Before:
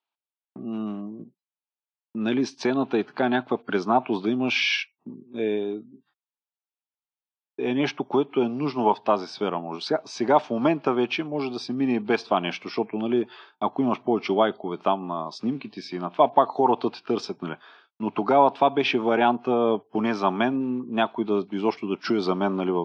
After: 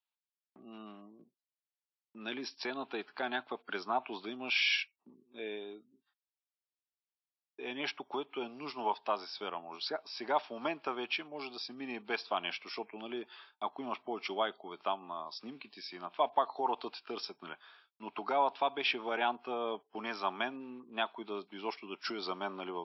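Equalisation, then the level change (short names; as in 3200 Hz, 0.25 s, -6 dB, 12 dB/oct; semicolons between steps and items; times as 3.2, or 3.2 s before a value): HPF 1200 Hz 6 dB/oct; brick-wall FIR low-pass 5700 Hz; high shelf 4500 Hz +4.5 dB; -6.5 dB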